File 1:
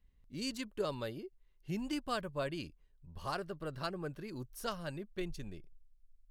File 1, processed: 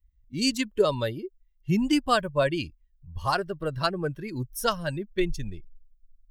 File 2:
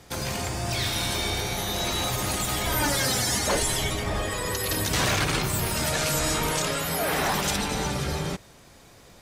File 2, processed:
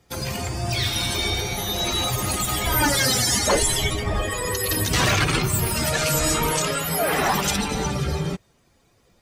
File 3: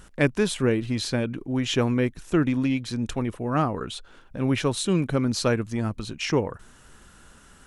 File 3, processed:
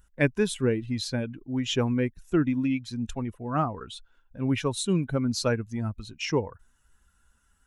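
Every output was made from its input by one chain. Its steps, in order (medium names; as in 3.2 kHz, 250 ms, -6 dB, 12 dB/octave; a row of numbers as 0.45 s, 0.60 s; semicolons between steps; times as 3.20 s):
expander on every frequency bin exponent 1.5; peak normalisation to -9 dBFS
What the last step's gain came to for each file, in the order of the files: +15.5 dB, +7.5 dB, -0.5 dB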